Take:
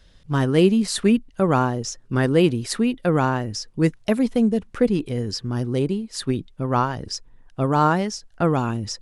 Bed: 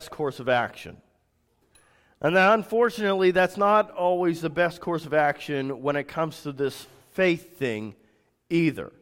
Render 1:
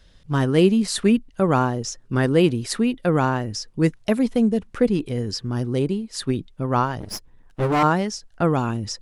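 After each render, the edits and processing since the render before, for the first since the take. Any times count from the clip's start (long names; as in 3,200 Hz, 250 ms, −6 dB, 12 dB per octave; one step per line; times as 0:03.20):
0:07.00–0:07.83: lower of the sound and its delayed copy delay 9.6 ms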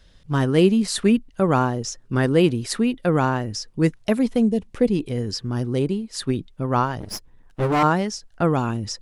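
0:04.42–0:05.08: parametric band 1,400 Hz −14 dB → −4.5 dB 0.63 octaves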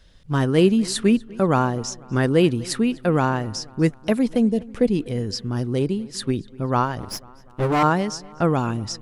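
feedback echo with a low-pass in the loop 246 ms, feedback 55%, low-pass 4,600 Hz, level −22 dB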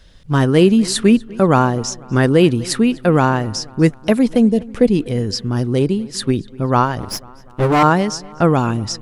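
level +6 dB
brickwall limiter −2 dBFS, peak gain reduction 2 dB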